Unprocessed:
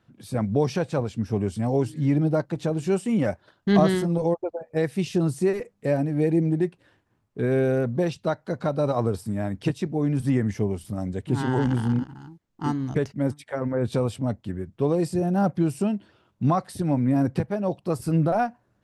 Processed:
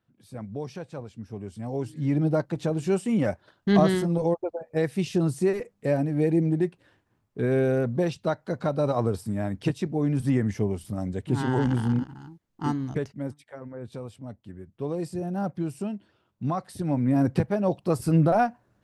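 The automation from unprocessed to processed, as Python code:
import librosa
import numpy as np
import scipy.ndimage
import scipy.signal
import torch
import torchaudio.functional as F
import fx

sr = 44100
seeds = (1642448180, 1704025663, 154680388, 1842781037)

y = fx.gain(x, sr, db=fx.line((1.41, -12.0), (2.27, -1.0), (12.73, -1.0), (13.65, -13.5), (14.24, -13.5), (14.98, -7.0), (16.43, -7.0), (17.39, 1.5)))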